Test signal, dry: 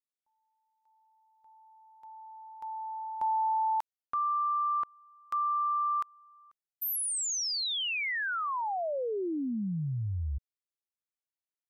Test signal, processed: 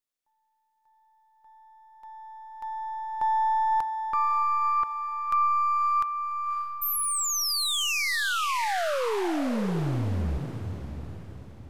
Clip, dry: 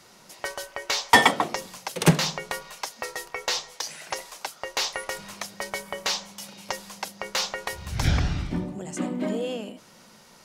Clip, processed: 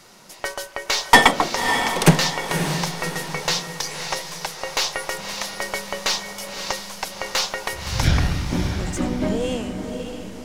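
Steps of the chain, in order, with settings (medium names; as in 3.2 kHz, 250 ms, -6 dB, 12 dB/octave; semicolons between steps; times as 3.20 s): partial rectifier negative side -3 dB; echo that smears into a reverb 570 ms, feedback 45%, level -7 dB; trim +5.5 dB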